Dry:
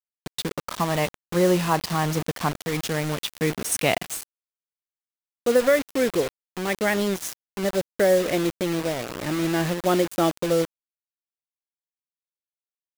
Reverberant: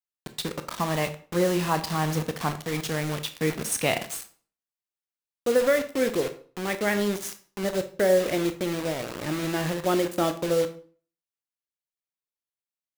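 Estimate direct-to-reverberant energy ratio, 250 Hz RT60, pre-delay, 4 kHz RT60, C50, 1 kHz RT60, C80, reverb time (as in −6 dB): 8.5 dB, 0.50 s, 19 ms, 0.35 s, 13.0 dB, 0.40 s, 17.5 dB, 0.45 s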